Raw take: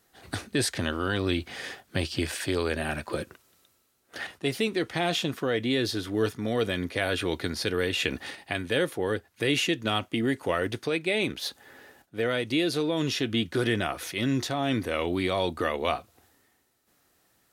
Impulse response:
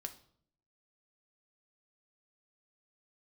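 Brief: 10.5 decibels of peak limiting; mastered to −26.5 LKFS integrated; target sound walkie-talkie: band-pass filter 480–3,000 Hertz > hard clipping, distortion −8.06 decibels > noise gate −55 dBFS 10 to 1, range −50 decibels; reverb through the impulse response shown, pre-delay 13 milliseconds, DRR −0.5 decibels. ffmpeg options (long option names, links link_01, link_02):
-filter_complex "[0:a]alimiter=limit=-20.5dB:level=0:latency=1,asplit=2[link_01][link_02];[1:a]atrim=start_sample=2205,adelay=13[link_03];[link_02][link_03]afir=irnorm=-1:irlink=0,volume=3.5dB[link_04];[link_01][link_04]amix=inputs=2:normalize=0,highpass=480,lowpass=3000,asoftclip=type=hard:threshold=-32.5dB,agate=range=-50dB:threshold=-55dB:ratio=10,volume=9.5dB"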